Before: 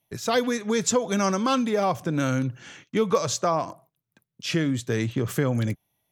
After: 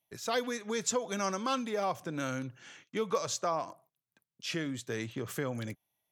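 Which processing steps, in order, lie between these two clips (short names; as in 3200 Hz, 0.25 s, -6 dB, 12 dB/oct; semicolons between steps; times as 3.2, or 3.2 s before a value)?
low shelf 260 Hz -9.5 dB; gain -7 dB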